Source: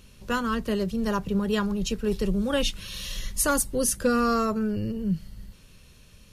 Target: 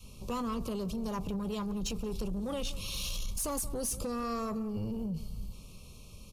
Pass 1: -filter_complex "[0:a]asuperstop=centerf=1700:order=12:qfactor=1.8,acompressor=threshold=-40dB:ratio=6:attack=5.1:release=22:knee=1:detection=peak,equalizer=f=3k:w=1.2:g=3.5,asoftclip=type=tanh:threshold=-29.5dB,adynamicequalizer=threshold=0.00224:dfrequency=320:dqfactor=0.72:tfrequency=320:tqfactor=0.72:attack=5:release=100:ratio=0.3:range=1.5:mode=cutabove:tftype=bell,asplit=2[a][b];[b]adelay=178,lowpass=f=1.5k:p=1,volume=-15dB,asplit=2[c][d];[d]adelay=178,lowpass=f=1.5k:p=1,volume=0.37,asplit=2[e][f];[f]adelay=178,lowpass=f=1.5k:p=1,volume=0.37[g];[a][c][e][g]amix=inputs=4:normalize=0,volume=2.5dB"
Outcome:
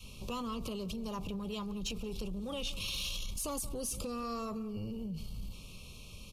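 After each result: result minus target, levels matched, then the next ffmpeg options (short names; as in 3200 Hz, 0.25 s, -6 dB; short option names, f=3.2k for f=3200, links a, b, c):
compressor: peak gain reduction +5.5 dB; 4000 Hz band +5.0 dB
-filter_complex "[0:a]asuperstop=centerf=1700:order=12:qfactor=1.8,acompressor=threshold=-33.5dB:ratio=6:attack=5.1:release=22:knee=1:detection=peak,equalizer=f=3k:w=1.2:g=3.5,asoftclip=type=tanh:threshold=-29.5dB,adynamicequalizer=threshold=0.00224:dfrequency=320:dqfactor=0.72:tfrequency=320:tqfactor=0.72:attack=5:release=100:ratio=0.3:range=1.5:mode=cutabove:tftype=bell,asplit=2[a][b];[b]adelay=178,lowpass=f=1.5k:p=1,volume=-15dB,asplit=2[c][d];[d]adelay=178,lowpass=f=1.5k:p=1,volume=0.37,asplit=2[e][f];[f]adelay=178,lowpass=f=1.5k:p=1,volume=0.37[g];[a][c][e][g]amix=inputs=4:normalize=0,volume=2.5dB"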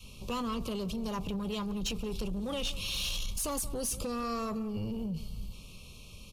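4000 Hz band +4.0 dB
-filter_complex "[0:a]asuperstop=centerf=1700:order=12:qfactor=1.8,acompressor=threshold=-33.5dB:ratio=6:attack=5.1:release=22:knee=1:detection=peak,equalizer=f=3k:w=1.2:g=-4,asoftclip=type=tanh:threshold=-29.5dB,adynamicequalizer=threshold=0.00224:dfrequency=320:dqfactor=0.72:tfrequency=320:tqfactor=0.72:attack=5:release=100:ratio=0.3:range=1.5:mode=cutabove:tftype=bell,asplit=2[a][b];[b]adelay=178,lowpass=f=1.5k:p=1,volume=-15dB,asplit=2[c][d];[d]adelay=178,lowpass=f=1.5k:p=1,volume=0.37,asplit=2[e][f];[f]adelay=178,lowpass=f=1.5k:p=1,volume=0.37[g];[a][c][e][g]amix=inputs=4:normalize=0,volume=2.5dB"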